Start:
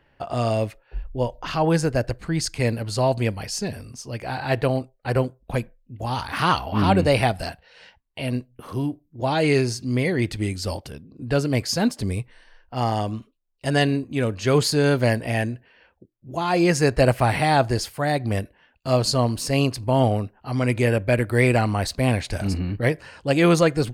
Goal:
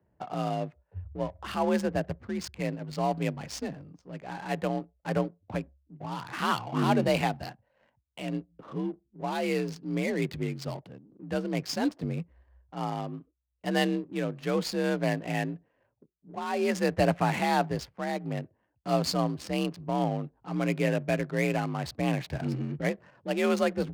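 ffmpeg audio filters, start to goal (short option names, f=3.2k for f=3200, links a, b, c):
-af "afreqshift=47,tremolo=f=0.58:d=0.31,adynamicsmooth=sensitivity=7.5:basefreq=690,volume=-6.5dB"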